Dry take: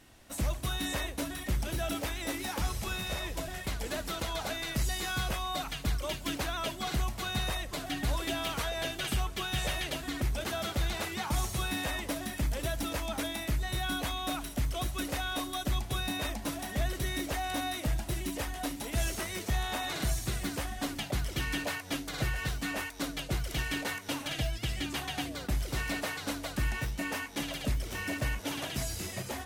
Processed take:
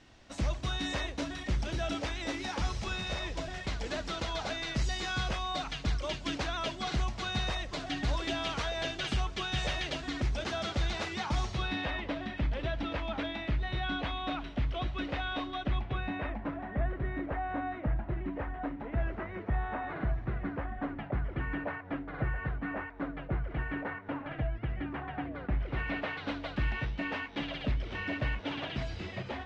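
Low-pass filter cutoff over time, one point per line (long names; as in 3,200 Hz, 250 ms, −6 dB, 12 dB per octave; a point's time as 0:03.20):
low-pass filter 24 dB per octave
0:11.20 6,100 Hz
0:11.97 3,500 Hz
0:15.44 3,500 Hz
0:16.66 1,800 Hz
0:25.18 1,800 Hz
0:26.34 3,600 Hz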